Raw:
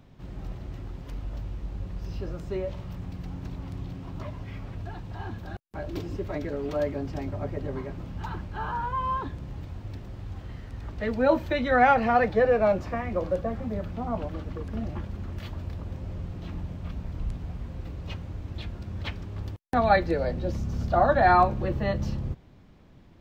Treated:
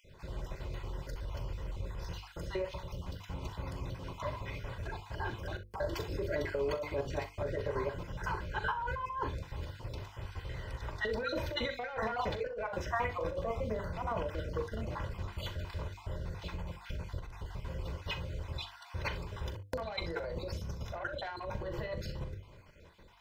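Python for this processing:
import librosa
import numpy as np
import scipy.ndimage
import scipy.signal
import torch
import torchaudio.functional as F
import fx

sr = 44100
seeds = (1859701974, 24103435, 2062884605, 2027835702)

p1 = fx.spec_dropout(x, sr, seeds[0], share_pct=33)
p2 = 10.0 ** (-15.5 / 20.0) * np.tanh(p1 / 10.0 ** (-15.5 / 20.0))
p3 = fx.peak_eq(p2, sr, hz=210.0, db=-5.5, octaves=2.3)
p4 = fx.hum_notches(p3, sr, base_hz=50, count=10)
p5 = p4 + 0.54 * np.pad(p4, (int(2.0 * sr / 1000.0), 0))[:len(p4)]
p6 = fx.over_compress(p5, sr, threshold_db=-34.0, ratio=-1.0)
p7 = fx.low_shelf(p6, sr, hz=95.0, db=-8.5)
p8 = p7 + fx.room_early_taps(p7, sr, ms=(41, 64), db=(-12.0, -15.0), dry=0)
y = F.gain(torch.from_numpy(p8), 1.0).numpy()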